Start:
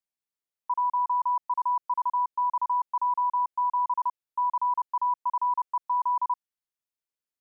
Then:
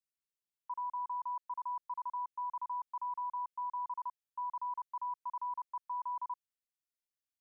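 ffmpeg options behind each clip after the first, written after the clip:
-af "equalizer=f=680:w=0.91:g=-12,volume=-4.5dB"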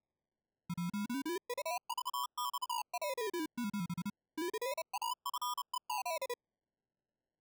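-af "acrusher=samples=29:mix=1:aa=0.000001:lfo=1:lforange=17.4:lforate=0.32"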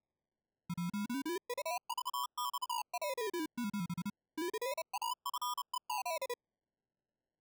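-af anull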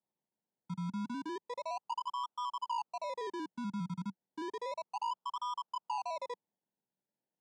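-filter_complex "[0:a]acrossover=split=5400[a][b];[b]acompressor=threshold=-59dB:ratio=4:attack=1:release=60[c];[a][c]amix=inputs=2:normalize=0,highpass=f=120:w=0.5412,highpass=f=120:w=1.3066,equalizer=f=190:t=q:w=4:g=5,equalizer=f=910:t=q:w=4:g=7,equalizer=f=2.4k:t=q:w=4:g=-8,lowpass=f=9k:w=0.5412,lowpass=f=9k:w=1.3066,volume=-2.5dB"

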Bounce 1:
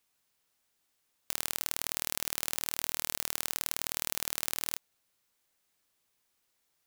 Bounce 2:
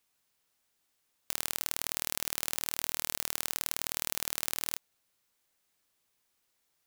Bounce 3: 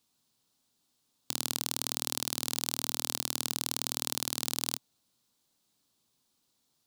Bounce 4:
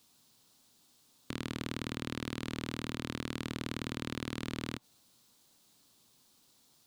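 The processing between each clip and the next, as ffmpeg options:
-af anull
-af "equalizer=f=125:t=o:w=1:g=9,equalizer=f=250:t=o:w=1:g=11,equalizer=f=1k:t=o:w=1:g=4,equalizer=f=2k:t=o:w=1:g=-7,equalizer=f=4k:t=o:w=1:g=8,equalizer=f=8k:t=o:w=1:g=3,volume=-2dB"
-filter_complex "[0:a]aeval=exprs='(tanh(15.8*val(0)+0.15)-tanh(0.15))/15.8':c=same,acrossover=split=2700[a][b];[b]acompressor=threshold=-55dB:ratio=4:attack=1:release=60[c];[a][c]amix=inputs=2:normalize=0,volume=9.5dB"

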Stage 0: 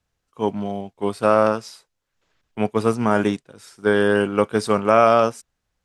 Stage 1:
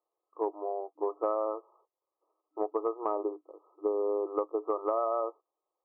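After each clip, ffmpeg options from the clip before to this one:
-af "afftfilt=real='re*between(b*sr/4096,310,1300)':imag='im*between(b*sr/4096,310,1300)':win_size=4096:overlap=0.75,acompressor=threshold=-24dB:ratio=6,volume=-3dB"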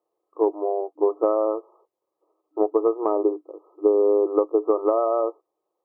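-af "equalizer=f=300:w=0.43:g=13"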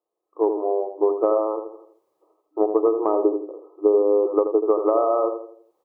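-filter_complex "[0:a]asplit=2[a][b];[b]adelay=82,lowpass=f=1.1k:p=1,volume=-7dB,asplit=2[c][d];[d]adelay=82,lowpass=f=1.1k:p=1,volume=0.4,asplit=2[e][f];[f]adelay=82,lowpass=f=1.1k:p=1,volume=0.4,asplit=2[g][h];[h]adelay=82,lowpass=f=1.1k:p=1,volume=0.4,asplit=2[i][j];[j]adelay=82,lowpass=f=1.1k:p=1,volume=0.4[k];[c][e][g][i][k]amix=inputs=5:normalize=0[l];[a][l]amix=inputs=2:normalize=0,dynaudnorm=f=100:g=7:m=15dB,volume=-6dB"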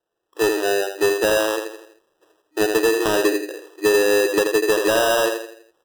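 -af "acrusher=samples=20:mix=1:aa=0.000001,asoftclip=type=tanh:threshold=-15dB,volume=4dB"

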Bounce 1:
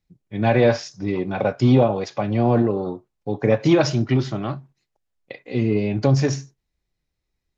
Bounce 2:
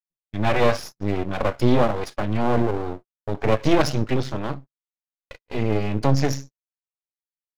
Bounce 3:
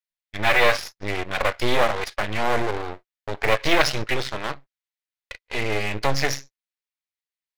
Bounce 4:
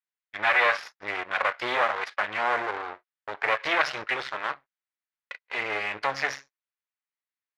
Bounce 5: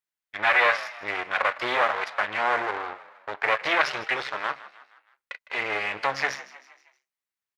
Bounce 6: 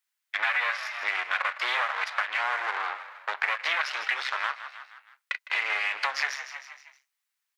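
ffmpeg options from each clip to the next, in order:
-af "agate=range=-47dB:threshold=-35dB:ratio=16:detection=peak,aeval=exprs='max(val(0),0)':c=same,volume=2.5dB"
-filter_complex "[0:a]equalizer=f=125:t=o:w=1:g=-9,equalizer=f=250:t=o:w=1:g=-10,equalizer=f=2k:t=o:w=1:g=9,equalizer=f=4k:t=o:w=1:g=6,asplit=2[a][b];[b]acrusher=bits=3:mix=0:aa=0.5,volume=-4dB[c];[a][c]amix=inputs=2:normalize=0,volume=-4dB"
-filter_complex "[0:a]asplit=2[a][b];[b]alimiter=limit=-10dB:level=0:latency=1:release=164,volume=0dB[c];[a][c]amix=inputs=2:normalize=0,bandpass=f=1.4k:t=q:w=1.1:csg=0,volume=-4dB"
-filter_complex "[0:a]asplit=5[a][b][c][d][e];[b]adelay=157,afreqshift=58,volume=-17dB[f];[c]adelay=314,afreqshift=116,volume=-23dB[g];[d]adelay=471,afreqshift=174,volume=-29dB[h];[e]adelay=628,afreqshift=232,volume=-35.1dB[i];[a][f][g][h][i]amix=inputs=5:normalize=0,volume=1.5dB"
-af "highpass=1.1k,acompressor=threshold=-33dB:ratio=6,volume=8.5dB"

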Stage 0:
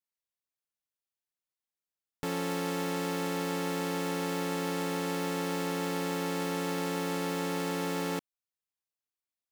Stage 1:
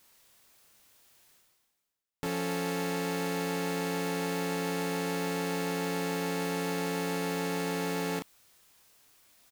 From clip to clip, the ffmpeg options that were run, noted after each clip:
-filter_complex "[0:a]asplit=2[a][b];[b]adelay=30,volume=-7dB[c];[a][c]amix=inputs=2:normalize=0,areverse,acompressor=mode=upward:threshold=-38dB:ratio=2.5,areverse"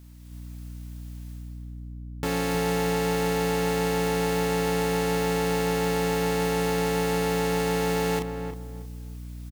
-filter_complex "[0:a]aeval=exprs='val(0)+0.00501*(sin(2*PI*60*n/s)+sin(2*PI*2*60*n/s)/2+sin(2*PI*3*60*n/s)/3+sin(2*PI*4*60*n/s)/4+sin(2*PI*5*60*n/s)/5)':c=same,asplit=2[a][b];[b]adelay=316,lowpass=f=1.3k:p=1,volume=-6.5dB,asplit=2[c][d];[d]adelay=316,lowpass=f=1.3k:p=1,volume=0.29,asplit=2[e][f];[f]adelay=316,lowpass=f=1.3k:p=1,volume=0.29,asplit=2[g][h];[h]adelay=316,lowpass=f=1.3k:p=1,volume=0.29[i];[a][c][e][g][i]amix=inputs=5:normalize=0,dynaudnorm=f=180:g=3:m=5.5dB"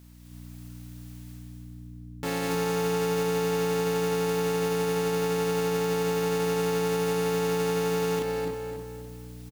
-filter_complex "[0:a]lowshelf=f=92:g=-7,alimiter=limit=-21dB:level=0:latency=1,asplit=2[a][b];[b]aecho=0:1:257|514|771|1028:0.473|0.175|0.0648|0.024[c];[a][c]amix=inputs=2:normalize=0"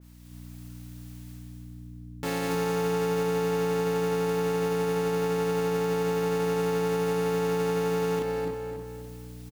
-af "adynamicequalizer=threshold=0.00355:dfrequency=2300:dqfactor=0.7:tfrequency=2300:tqfactor=0.7:attack=5:release=100:ratio=0.375:range=2.5:mode=cutabove:tftype=highshelf"

